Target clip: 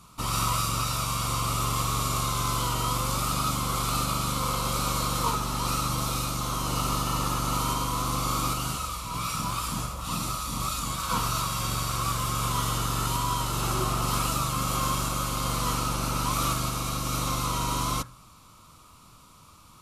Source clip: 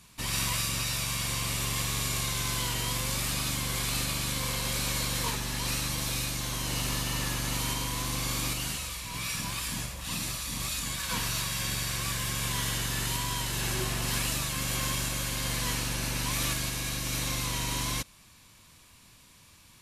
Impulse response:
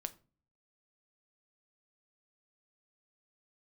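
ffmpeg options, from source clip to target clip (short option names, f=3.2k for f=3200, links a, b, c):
-filter_complex "[0:a]asplit=2[a][b];[b]lowpass=f=1.3k:t=q:w=12[c];[1:a]atrim=start_sample=2205[d];[c][d]afir=irnorm=-1:irlink=0,volume=-1.5dB[e];[a][e]amix=inputs=2:normalize=0"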